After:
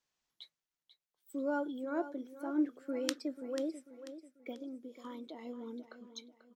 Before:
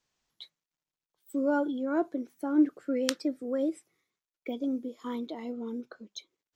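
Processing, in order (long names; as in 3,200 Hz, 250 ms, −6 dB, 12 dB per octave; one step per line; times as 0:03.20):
low-shelf EQ 320 Hz −5 dB
0:04.51–0:05.45: downward compressor 4 to 1, threshold −37 dBFS, peak gain reduction 6.5 dB
repeating echo 490 ms, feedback 38%, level −12.5 dB
level −5.5 dB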